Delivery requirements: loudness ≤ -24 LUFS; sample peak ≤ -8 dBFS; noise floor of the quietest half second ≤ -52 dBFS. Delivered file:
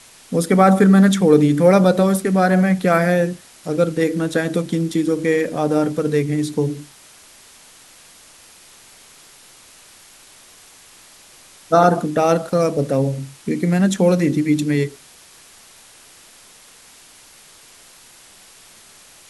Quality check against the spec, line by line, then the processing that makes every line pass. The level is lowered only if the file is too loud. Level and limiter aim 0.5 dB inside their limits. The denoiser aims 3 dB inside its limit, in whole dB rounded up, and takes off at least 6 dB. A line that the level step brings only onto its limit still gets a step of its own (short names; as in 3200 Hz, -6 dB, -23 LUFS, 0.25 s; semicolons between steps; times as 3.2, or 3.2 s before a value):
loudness -17.0 LUFS: fail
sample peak -1.5 dBFS: fail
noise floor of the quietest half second -46 dBFS: fail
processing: gain -7.5 dB